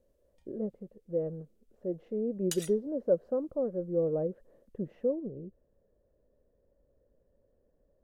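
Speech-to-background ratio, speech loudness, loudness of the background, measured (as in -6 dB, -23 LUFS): 7.0 dB, -33.5 LUFS, -40.5 LUFS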